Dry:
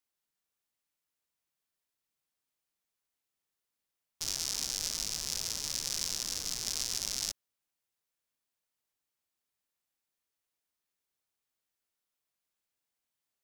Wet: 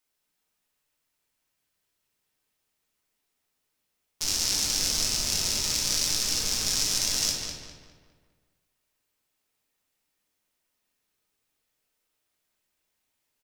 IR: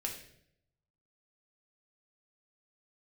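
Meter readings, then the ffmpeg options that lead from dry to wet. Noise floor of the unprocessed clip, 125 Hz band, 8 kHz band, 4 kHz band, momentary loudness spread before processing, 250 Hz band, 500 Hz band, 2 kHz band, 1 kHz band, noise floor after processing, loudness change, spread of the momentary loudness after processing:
under -85 dBFS, +11.0 dB, +8.0 dB, +9.0 dB, 3 LU, +11.5 dB, +10.5 dB, +10.0 dB, +9.0 dB, -79 dBFS, +8.5 dB, 6 LU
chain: -filter_complex "[0:a]asplit=2[s0][s1];[s1]adelay=203,lowpass=f=3100:p=1,volume=0.668,asplit=2[s2][s3];[s3]adelay=203,lowpass=f=3100:p=1,volume=0.46,asplit=2[s4][s5];[s5]adelay=203,lowpass=f=3100:p=1,volume=0.46,asplit=2[s6][s7];[s7]adelay=203,lowpass=f=3100:p=1,volume=0.46,asplit=2[s8][s9];[s9]adelay=203,lowpass=f=3100:p=1,volume=0.46,asplit=2[s10][s11];[s11]adelay=203,lowpass=f=3100:p=1,volume=0.46[s12];[s0][s2][s4][s6][s8][s10][s12]amix=inputs=7:normalize=0[s13];[1:a]atrim=start_sample=2205[s14];[s13][s14]afir=irnorm=-1:irlink=0,volume=2.37"

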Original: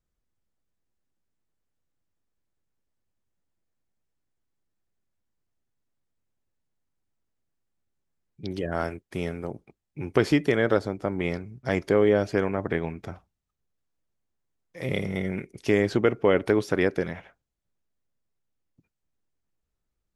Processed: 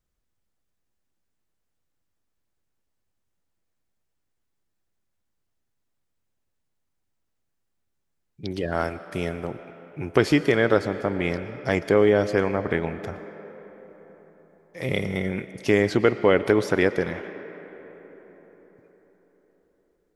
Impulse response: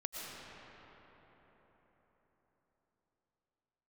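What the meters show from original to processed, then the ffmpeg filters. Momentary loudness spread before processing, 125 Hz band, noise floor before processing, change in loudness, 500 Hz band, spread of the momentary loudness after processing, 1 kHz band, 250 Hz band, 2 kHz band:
14 LU, +1.5 dB, -82 dBFS, +2.5 dB, +2.5 dB, 19 LU, +3.5 dB, +2.0 dB, +4.0 dB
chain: -filter_complex "[0:a]asplit=2[s0][s1];[s1]highpass=f=140:w=0.5412,highpass=f=140:w=1.3066[s2];[1:a]atrim=start_sample=2205,lowshelf=f=330:g=-9[s3];[s2][s3]afir=irnorm=-1:irlink=0,volume=0.335[s4];[s0][s4]amix=inputs=2:normalize=0,volume=1.26"

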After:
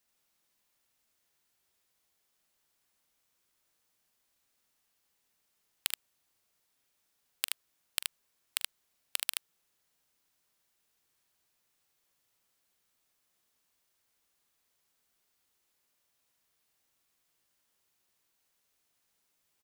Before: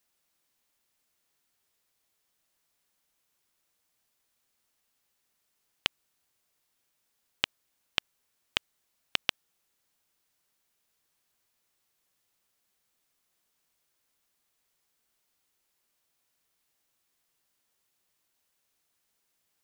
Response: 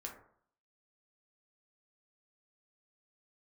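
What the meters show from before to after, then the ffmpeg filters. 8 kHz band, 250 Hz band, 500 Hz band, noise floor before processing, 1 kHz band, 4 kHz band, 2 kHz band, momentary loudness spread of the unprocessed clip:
+10.5 dB, -16.5 dB, -13.0 dB, -78 dBFS, -8.5 dB, -5.5 dB, -7.0 dB, 3 LU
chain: -af "aeval=exprs='(mod(2.37*val(0)+1,2)-1)/2.37':c=same,aecho=1:1:43|76:0.211|0.708,volume=0.794"

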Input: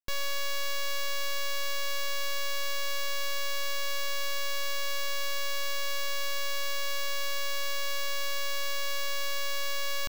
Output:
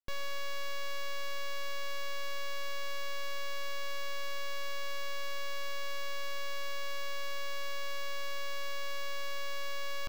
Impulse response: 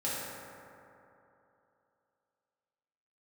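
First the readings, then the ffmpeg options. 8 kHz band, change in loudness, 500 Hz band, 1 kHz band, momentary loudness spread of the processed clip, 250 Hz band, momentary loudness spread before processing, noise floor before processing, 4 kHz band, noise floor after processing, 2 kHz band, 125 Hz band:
-11.5 dB, -7.5 dB, -4.0 dB, -4.0 dB, 0 LU, -4.0 dB, 0 LU, -28 dBFS, -8.5 dB, -32 dBFS, -6.0 dB, no reading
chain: -filter_complex "[0:a]highshelf=f=4000:g=-10,asplit=2[s0][s1];[1:a]atrim=start_sample=2205,lowpass=3400[s2];[s1][s2]afir=irnorm=-1:irlink=0,volume=0.0794[s3];[s0][s3]amix=inputs=2:normalize=0,volume=0.631"

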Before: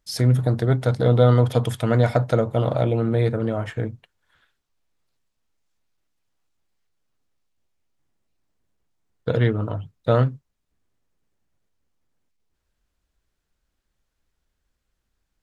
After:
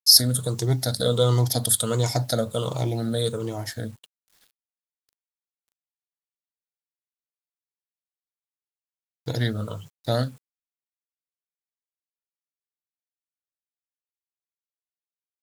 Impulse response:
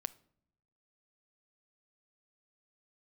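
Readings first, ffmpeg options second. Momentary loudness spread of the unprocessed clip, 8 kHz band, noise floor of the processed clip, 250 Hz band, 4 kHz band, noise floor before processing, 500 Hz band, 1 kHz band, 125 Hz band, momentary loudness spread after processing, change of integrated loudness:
11 LU, no reading, under -85 dBFS, -5.0 dB, +14.5 dB, -77 dBFS, -5.0 dB, -5.0 dB, -5.5 dB, 13 LU, -2.5 dB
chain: -af "afftfilt=real='re*pow(10,11/40*sin(2*PI*(0.73*log(max(b,1)*sr/1024/100)/log(2)-(-1.4)*(pts-256)/sr)))':imag='im*pow(10,11/40*sin(2*PI*(0.73*log(max(b,1)*sr/1024/100)/log(2)-(-1.4)*(pts-256)/sr)))':win_size=1024:overlap=0.75,aexciter=amount=11.1:drive=5.8:freq=3700,acrusher=bits=7:mix=0:aa=0.000001,volume=0.473"

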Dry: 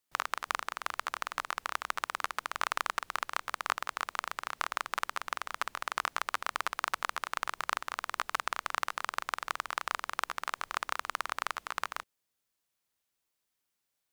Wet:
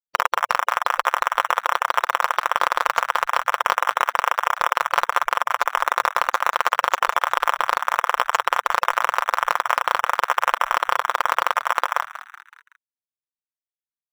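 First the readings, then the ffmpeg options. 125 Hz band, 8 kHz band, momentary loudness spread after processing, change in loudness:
no reading, +8.5 dB, 1 LU, +14.5 dB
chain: -filter_complex "[0:a]afftfilt=real='re*gte(hypot(re,im),0.0126)':imag='im*gte(hypot(re,im),0.0126)':win_size=1024:overlap=0.75,aecho=1:1:5.7:0.4,adynamicequalizer=threshold=0.00316:dfrequency=970:dqfactor=5.8:tfrequency=970:tqfactor=5.8:attack=5:release=100:ratio=0.375:range=2.5:mode=boostabove:tftype=bell,aexciter=amount=9.3:drive=4.4:freq=7400,equalizer=f=125:t=o:w=1:g=-5,equalizer=f=250:t=o:w=1:g=-11,equalizer=f=500:t=o:w=1:g=10,asplit=2[s0][s1];[s1]acrusher=samples=10:mix=1:aa=0.000001,volume=0.355[s2];[s0][s2]amix=inputs=2:normalize=0,asplit=5[s3][s4][s5][s6][s7];[s4]adelay=188,afreqshift=110,volume=0.158[s8];[s5]adelay=376,afreqshift=220,volume=0.0759[s9];[s6]adelay=564,afreqshift=330,volume=0.0363[s10];[s7]adelay=752,afreqshift=440,volume=0.0176[s11];[s3][s8][s9][s10][s11]amix=inputs=5:normalize=0,alimiter=level_in=5.31:limit=0.891:release=50:level=0:latency=1,volume=0.891"

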